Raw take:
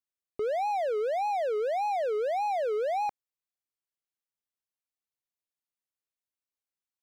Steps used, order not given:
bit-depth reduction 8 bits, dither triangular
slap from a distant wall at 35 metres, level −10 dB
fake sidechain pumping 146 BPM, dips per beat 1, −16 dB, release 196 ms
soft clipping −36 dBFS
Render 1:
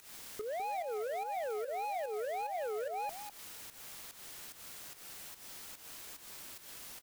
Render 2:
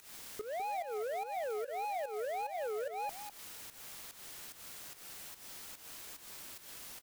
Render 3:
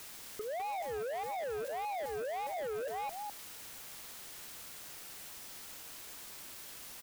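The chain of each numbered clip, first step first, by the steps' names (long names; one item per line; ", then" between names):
bit-depth reduction, then fake sidechain pumping, then soft clipping, then slap from a distant wall
bit-depth reduction, then soft clipping, then fake sidechain pumping, then slap from a distant wall
fake sidechain pumping, then bit-depth reduction, then slap from a distant wall, then soft clipping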